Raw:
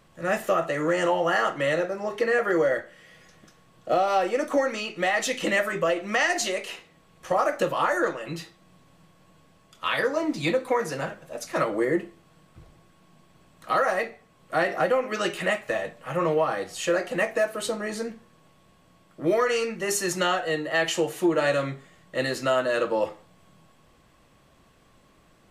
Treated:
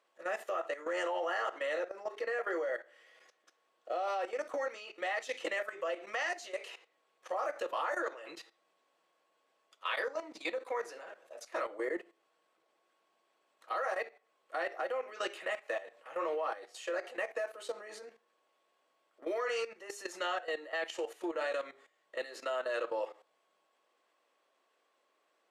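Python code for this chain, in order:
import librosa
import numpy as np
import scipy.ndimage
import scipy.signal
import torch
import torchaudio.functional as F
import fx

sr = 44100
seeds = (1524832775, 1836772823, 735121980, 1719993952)

y = scipy.signal.sosfilt(scipy.signal.butter(4, 400.0, 'highpass', fs=sr, output='sos'), x)
y = fx.high_shelf(y, sr, hz=9300.0, db=-11.0)
y = fx.level_steps(y, sr, step_db=14)
y = F.gain(torch.from_numpy(y), -6.0).numpy()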